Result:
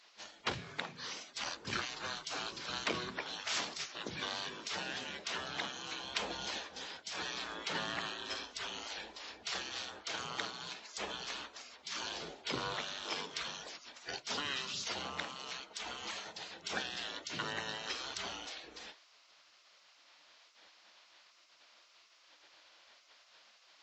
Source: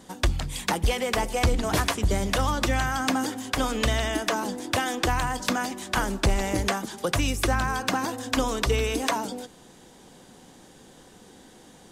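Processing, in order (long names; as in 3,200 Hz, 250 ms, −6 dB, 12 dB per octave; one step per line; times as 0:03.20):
gate on every frequency bin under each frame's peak −20 dB weak
high-pass filter 310 Hz 6 dB per octave
wrong playback speed 15 ips tape played at 7.5 ips
level −3 dB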